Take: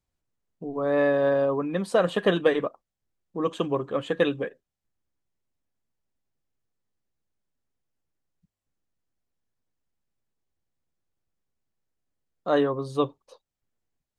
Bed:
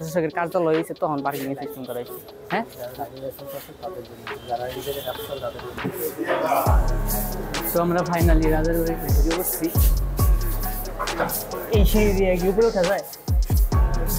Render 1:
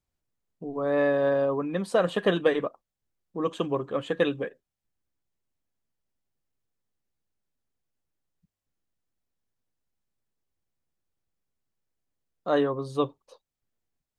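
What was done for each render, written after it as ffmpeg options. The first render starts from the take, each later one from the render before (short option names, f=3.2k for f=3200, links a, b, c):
-af "volume=-1.5dB"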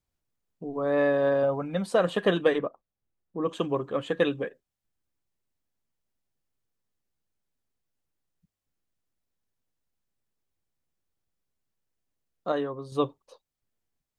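-filter_complex "[0:a]asettb=1/sr,asplit=3[a][b][c];[a]atrim=end=1.434[d];[b]atrim=start=1.43:end=1.86,asetpts=PTS-STARTPTS,afade=t=in:d=0.004:c=qsin,afade=t=out:st=0.426:d=0.004:c=qsin,aecho=1:1:1.4:0.63,atrim=end_sample=18963[e];[c]atrim=start=1.856[f];[d][e]acrossfade=d=0.004:c1=hsin:c2=qsin[g];[g][f]acrossfade=d=0.004:c1=qsin:c2=hsin,asettb=1/sr,asplit=3[h][i][j];[h]atrim=end=2.584[k];[i]atrim=start=2.58:end=3.49,asetpts=PTS-STARTPTS,afade=t=in:d=0.004:c=qsin,afade=t=out:st=0.906:d=0.004:c=qsin,lowpass=f=1.4k:p=1[l];[j]atrim=start=3.486[m];[k][l]acrossfade=d=0.004:c1=hsin:c2=qsin[n];[n][m]acrossfade=d=0.004:c1=qsin:c2=hsin,asplit=3[o][p][q];[o]atrim=end=12.522[r];[p]atrim=start=12.518:end=12.922,asetpts=PTS-STARTPTS,volume=-6dB[s];[q]atrim=start=12.918[t];[r][s]acrossfade=d=0.004:c1=hsin:c2=hsin[u];[u][t]acrossfade=d=0.004:c1=hsin:c2=hsin"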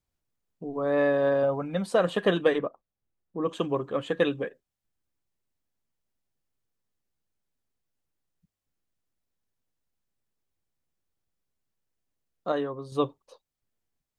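-af anull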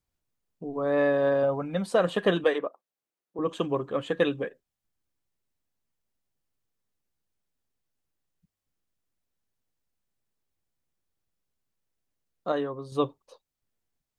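-filter_complex "[0:a]asettb=1/sr,asplit=3[a][b][c];[a]atrim=end=2.444[d];[b]atrim=start=2.44:end=3.39,asetpts=PTS-STARTPTS,afade=t=in:d=0.004:c=qsin,afade=t=out:st=0.946:d=0.004:c=qsin,highpass=340[e];[c]atrim=start=3.386[f];[d][e]acrossfade=d=0.004:c1=hsin:c2=qsin[g];[g][f]acrossfade=d=0.004:c1=qsin:c2=hsin"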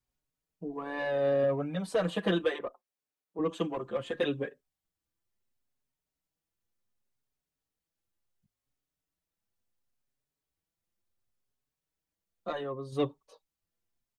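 -filter_complex "[0:a]acrossover=split=420|2100[a][b][c];[b]asoftclip=type=tanh:threshold=-25.5dB[d];[a][d][c]amix=inputs=3:normalize=0,asplit=2[e][f];[f]adelay=5.1,afreqshift=0.7[g];[e][g]amix=inputs=2:normalize=1"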